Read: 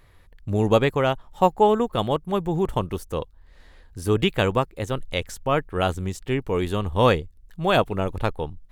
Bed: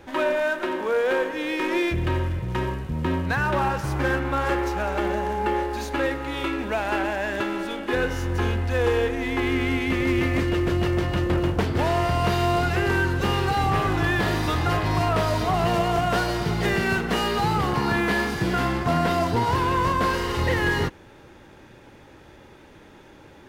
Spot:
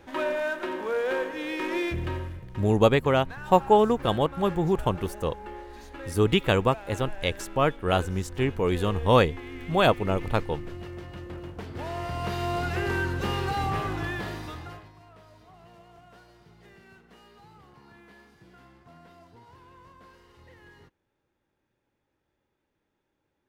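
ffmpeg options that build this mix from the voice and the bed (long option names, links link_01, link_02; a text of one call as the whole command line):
ffmpeg -i stem1.wav -i stem2.wav -filter_complex "[0:a]adelay=2100,volume=-1dB[link_01];[1:a]volume=6dB,afade=type=out:start_time=1.94:duration=0.56:silence=0.266073,afade=type=in:start_time=11.54:duration=1.27:silence=0.281838,afade=type=out:start_time=13.62:duration=1.3:silence=0.0562341[link_02];[link_01][link_02]amix=inputs=2:normalize=0" out.wav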